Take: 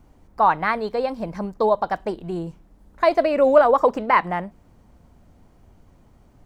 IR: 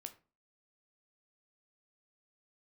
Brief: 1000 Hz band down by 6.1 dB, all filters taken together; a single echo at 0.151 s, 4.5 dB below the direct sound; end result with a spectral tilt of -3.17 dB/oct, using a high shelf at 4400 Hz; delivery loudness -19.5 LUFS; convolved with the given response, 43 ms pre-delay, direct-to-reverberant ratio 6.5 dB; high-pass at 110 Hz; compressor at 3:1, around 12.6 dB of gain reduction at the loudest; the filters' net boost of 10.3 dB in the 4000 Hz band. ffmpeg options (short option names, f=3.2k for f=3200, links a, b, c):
-filter_complex "[0:a]highpass=110,equalizer=f=1k:t=o:g=-8.5,equalizer=f=4k:t=o:g=8.5,highshelf=f=4.4k:g=9,acompressor=threshold=-29dB:ratio=3,aecho=1:1:151:0.596,asplit=2[a][b];[1:a]atrim=start_sample=2205,adelay=43[c];[b][c]afir=irnorm=-1:irlink=0,volume=-1.5dB[d];[a][d]amix=inputs=2:normalize=0,volume=10dB"